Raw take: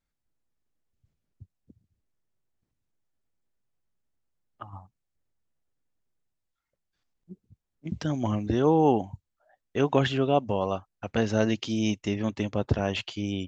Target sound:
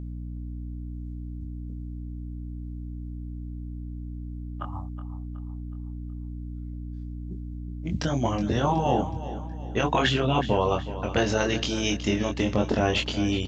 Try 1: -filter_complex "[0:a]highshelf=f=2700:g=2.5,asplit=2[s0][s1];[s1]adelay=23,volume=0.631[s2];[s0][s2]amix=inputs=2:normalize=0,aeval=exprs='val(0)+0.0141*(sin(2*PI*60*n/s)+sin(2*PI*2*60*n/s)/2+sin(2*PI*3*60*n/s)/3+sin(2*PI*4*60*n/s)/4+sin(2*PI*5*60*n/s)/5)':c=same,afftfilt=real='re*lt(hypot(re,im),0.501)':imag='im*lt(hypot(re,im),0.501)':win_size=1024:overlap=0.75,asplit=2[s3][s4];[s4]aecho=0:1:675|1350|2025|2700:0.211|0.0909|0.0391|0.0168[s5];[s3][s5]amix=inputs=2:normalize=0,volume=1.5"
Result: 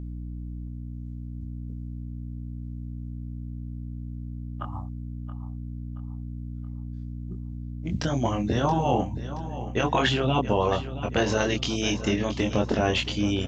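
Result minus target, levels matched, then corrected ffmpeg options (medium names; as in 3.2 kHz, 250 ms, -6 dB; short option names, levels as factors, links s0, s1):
echo 305 ms late
-filter_complex "[0:a]highshelf=f=2700:g=2.5,asplit=2[s0][s1];[s1]adelay=23,volume=0.631[s2];[s0][s2]amix=inputs=2:normalize=0,aeval=exprs='val(0)+0.0141*(sin(2*PI*60*n/s)+sin(2*PI*2*60*n/s)/2+sin(2*PI*3*60*n/s)/3+sin(2*PI*4*60*n/s)/4+sin(2*PI*5*60*n/s)/5)':c=same,afftfilt=real='re*lt(hypot(re,im),0.501)':imag='im*lt(hypot(re,im),0.501)':win_size=1024:overlap=0.75,asplit=2[s3][s4];[s4]aecho=0:1:370|740|1110|1480:0.211|0.0909|0.0391|0.0168[s5];[s3][s5]amix=inputs=2:normalize=0,volume=1.5"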